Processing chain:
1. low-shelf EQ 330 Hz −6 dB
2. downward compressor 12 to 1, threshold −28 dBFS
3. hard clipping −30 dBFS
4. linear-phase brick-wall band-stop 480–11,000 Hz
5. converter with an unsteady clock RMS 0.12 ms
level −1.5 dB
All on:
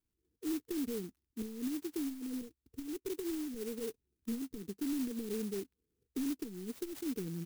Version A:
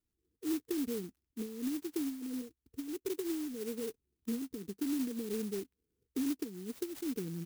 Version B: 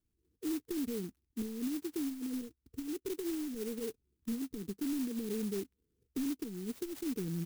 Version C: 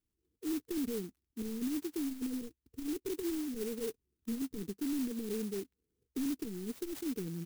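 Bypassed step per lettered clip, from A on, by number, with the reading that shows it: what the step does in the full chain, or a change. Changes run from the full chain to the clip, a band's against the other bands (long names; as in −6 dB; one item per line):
3, distortion level −12 dB
1, 125 Hz band +2.5 dB
2, average gain reduction 4.0 dB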